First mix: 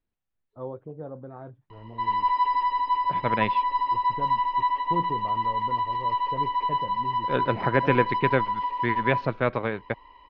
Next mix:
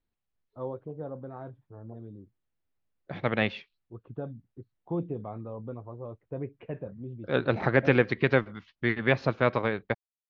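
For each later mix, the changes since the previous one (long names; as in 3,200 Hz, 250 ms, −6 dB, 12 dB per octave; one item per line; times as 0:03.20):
background: muted
master: remove low-pass filter 3,700 Hz 12 dB per octave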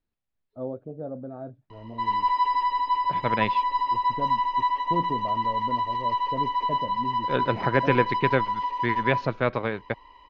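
first voice: add thirty-one-band graphic EQ 250 Hz +9 dB, 630 Hz +9 dB, 1,000 Hz −11 dB, 2,000 Hz −11 dB, 3,150 Hz −8 dB
background: unmuted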